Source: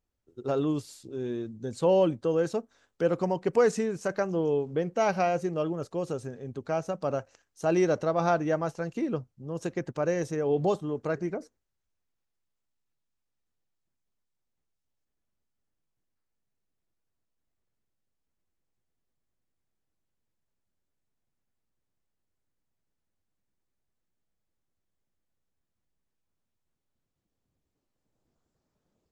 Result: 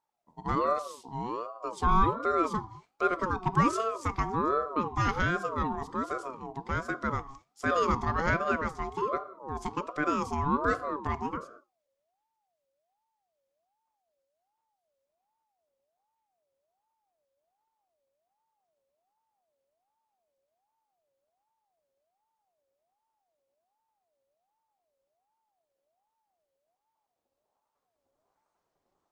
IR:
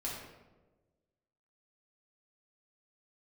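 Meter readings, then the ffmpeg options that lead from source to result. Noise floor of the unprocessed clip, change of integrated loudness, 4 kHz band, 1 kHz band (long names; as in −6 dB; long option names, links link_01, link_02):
−82 dBFS, −1.5 dB, +0.5 dB, +5.5 dB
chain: -filter_complex "[0:a]asplit=2[link_01][link_02];[link_02]equalizer=frequency=250:width_type=o:width=1:gain=11,equalizer=frequency=500:width_type=o:width=1:gain=9,equalizer=frequency=4000:width_type=o:width=1:gain=12[link_03];[1:a]atrim=start_sample=2205,afade=type=out:start_time=0.32:duration=0.01,atrim=end_sample=14553,asetrate=52920,aresample=44100[link_04];[link_03][link_04]afir=irnorm=-1:irlink=0,volume=-19.5dB[link_05];[link_01][link_05]amix=inputs=2:normalize=0,aeval=exprs='val(0)*sin(2*PI*720*n/s+720*0.25/1.3*sin(2*PI*1.3*n/s))':channel_layout=same"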